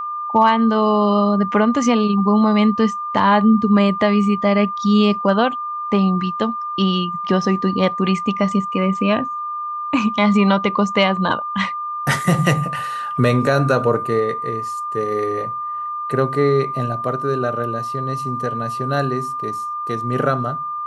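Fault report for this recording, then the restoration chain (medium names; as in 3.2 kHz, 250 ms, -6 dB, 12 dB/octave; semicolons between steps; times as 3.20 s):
whine 1.2 kHz -23 dBFS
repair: band-stop 1.2 kHz, Q 30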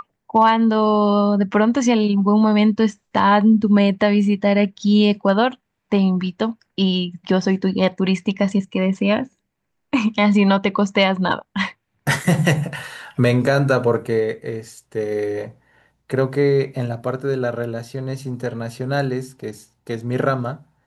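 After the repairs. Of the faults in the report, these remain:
nothing left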